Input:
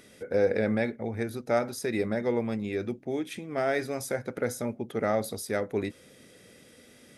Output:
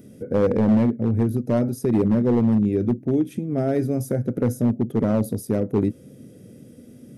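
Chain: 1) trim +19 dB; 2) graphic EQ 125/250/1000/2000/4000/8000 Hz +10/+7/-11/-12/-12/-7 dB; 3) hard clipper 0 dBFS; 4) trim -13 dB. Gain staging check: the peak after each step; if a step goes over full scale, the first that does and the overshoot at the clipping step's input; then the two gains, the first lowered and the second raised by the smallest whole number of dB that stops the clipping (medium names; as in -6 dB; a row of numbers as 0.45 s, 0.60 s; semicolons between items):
+5.5 dBFS, +7.5 dBFS, 0.0 dBFS, -13.0 dBFS; step 1, 7.5 dB; step 1 +11 dB, step 4 -5 dB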